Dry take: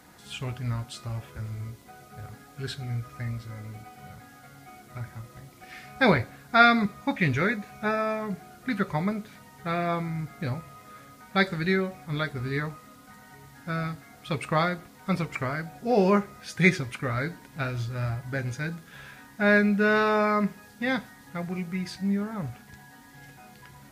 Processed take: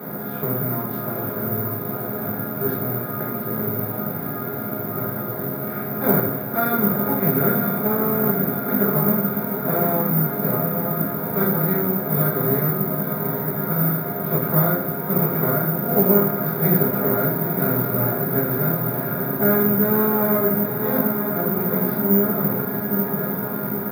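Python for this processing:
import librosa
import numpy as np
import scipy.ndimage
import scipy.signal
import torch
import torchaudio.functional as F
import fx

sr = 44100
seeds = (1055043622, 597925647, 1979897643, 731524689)

p1 = fx.bin_compress(x, sr, power=0.4)
p2 = fx.tilt_shelf(p1, sr, db=5.0, hz=800.0)
p3 = p2 + fx.echo_diffused(p2, sr, ms=901, feedback_pct=66, wet_db=-6.0, dry=0)
p4 = fx.room_shoebox(p3, sr, seeds[0], volume_m3=37.0, walls='mixed', distance_m=1.4)
p5 = (np.kron(scipy.signal.resample_poly(p4, 1, 3), np.eye(3)[0]) * 3)[:len(p4)]
p6 = scipy.signal.sosfilt(scipy.signal.butter(2, 120.0, 'highpass', fs=sr, output='sos'), p5)
p7 = fx.high_shelf_res(p6, sr, hz=1800.0, db=-7.0, q=1.5)
y = F.gain(torch.from_numpy(p7), -16.0).numpy()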